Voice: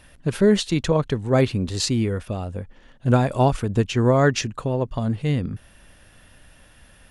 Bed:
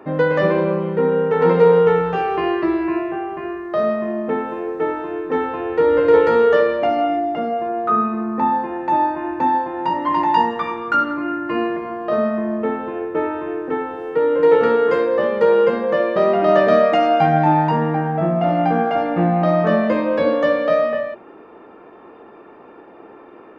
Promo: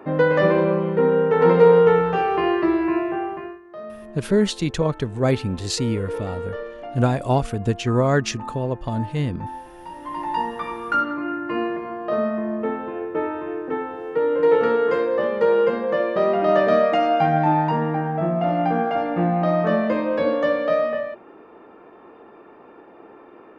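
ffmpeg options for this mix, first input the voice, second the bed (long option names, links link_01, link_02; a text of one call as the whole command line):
ffmpeg -i stem1.wav -i stem2.wav -filter_complex "[0:a]adelay=3900,volume=-1.5dB[link_01];[1:a]volume=13dB,afade=type=out:start_time=3.26:duration=0.34:silence=0.149624,afade=type=in:start_time=9.93:duration=0.99:silence=0.211349[link_02];[link_01][link_02]amix=inputs=2:normalize=0" out.wav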